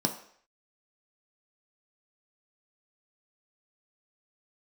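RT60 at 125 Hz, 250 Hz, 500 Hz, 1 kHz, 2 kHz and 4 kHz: 0.35, 0.50, 0.60, 0.60, 0.65, 0.60 seconds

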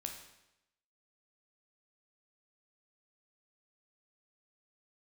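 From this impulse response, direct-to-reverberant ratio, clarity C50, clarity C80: 3.0 dB, 6.0 dB, 8.5 dB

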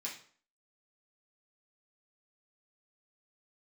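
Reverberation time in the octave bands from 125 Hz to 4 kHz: 0.45, 0.50, 0.50, 0.50, 0.45, 0.40 seconds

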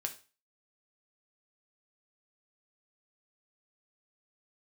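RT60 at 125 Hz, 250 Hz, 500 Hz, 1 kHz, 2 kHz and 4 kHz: 0.35, 0.35, 0.35, 0.35, 0.35, 0.35 seconds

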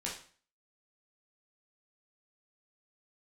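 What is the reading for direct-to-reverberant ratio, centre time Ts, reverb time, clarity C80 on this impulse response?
−5.0 dB, 31 ms, 0.45 s, 11.0 dB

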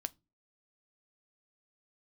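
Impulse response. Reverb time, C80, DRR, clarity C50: non-exponential decay, 37.5 dB, 13.0 dB, 28.5 dB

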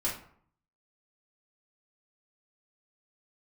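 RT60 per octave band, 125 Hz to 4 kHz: 0.75, 0.65, 0.60, 0.60, 0.50, 0.35 seconds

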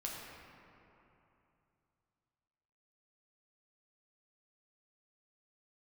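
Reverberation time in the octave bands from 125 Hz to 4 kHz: 3.6, 3.1, 2.9, 3.0, 2.5, 1.6 seconds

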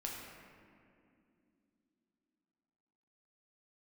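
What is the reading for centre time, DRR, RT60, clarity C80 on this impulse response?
99 ms, −2.5 dB, 2.6 s, 2.0 dB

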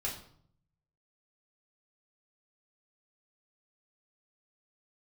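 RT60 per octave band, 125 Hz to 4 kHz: 1.1, 0.85, 0.65, 0.60, 0.45, 0.45 seconds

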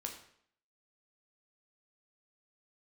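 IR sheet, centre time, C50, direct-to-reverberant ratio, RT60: 21 ms, 7.5 dB, 1.5 dB, 0.65 s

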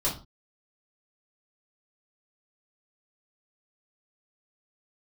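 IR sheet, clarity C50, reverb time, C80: 9.0 dB, 0.35 s, 15.5 dB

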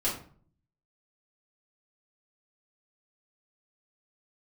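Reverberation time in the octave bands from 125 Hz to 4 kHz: 0.85, 0.70, 0.50, 0.45, 0.40, 0.30 seconds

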